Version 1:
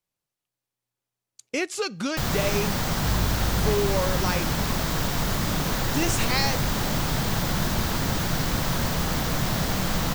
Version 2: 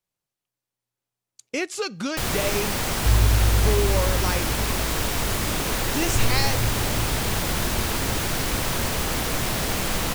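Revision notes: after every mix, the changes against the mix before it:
first sound: add fifteen-band graphic EQ 160 Hz -7 dB, 400 Hz +4 dB, 2.5 kHz +5 dB, 10 kHz +9 dB; second sound +9.0 dB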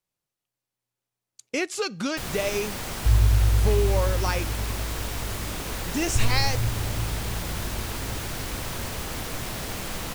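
first sound -7.5 dB

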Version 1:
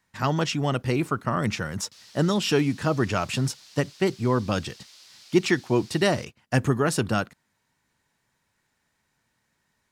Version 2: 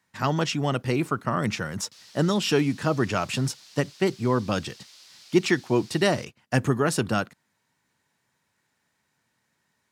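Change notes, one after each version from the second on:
speech: add high-pass 97 Hz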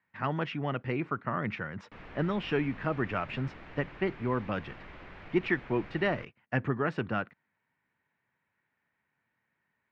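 background: remove band-pass filter 4.7 kHz, Q 2.3; master: add four-pole ladder low-pass 2.7 kHz, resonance 35%

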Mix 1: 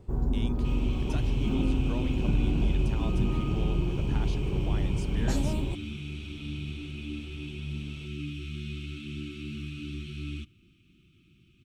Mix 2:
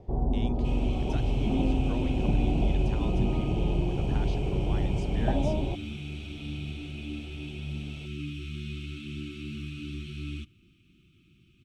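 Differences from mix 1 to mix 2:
speech: add distance through air 66 m; first sound: add resonant low-pass 720 Hz, resonance Q 3.4

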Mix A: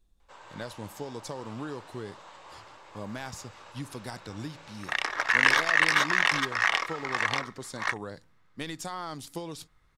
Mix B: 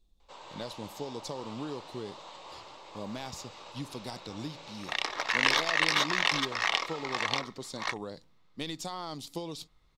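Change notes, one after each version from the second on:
first sound +3.5 dB; master: add fifteen-band graphic EQ 100 Hz -6 dB, 1.6 kHz -10 dB, 4 kHz +5 dB, 10 kHz -6 dB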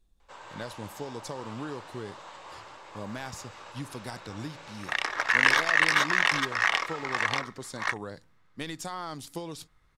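master: add fifteen-band graphic EQ 100 Hz +6 dB, 1.6 kHz +10 dB, 4 kHz -5 dB, 10 kHz +6 dB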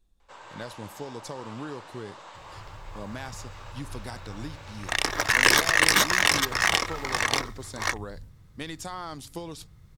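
second sound: remove band-pass filter 1.5 kHz, Q 0.88

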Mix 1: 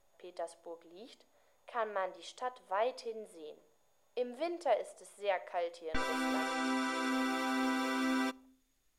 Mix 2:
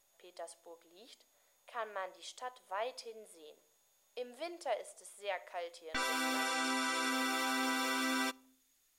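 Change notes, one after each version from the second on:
speech -4.5 dB; master: add tilt EQ +2.5 dB/octave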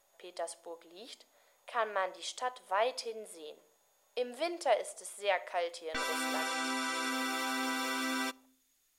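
speech +8.0 dB

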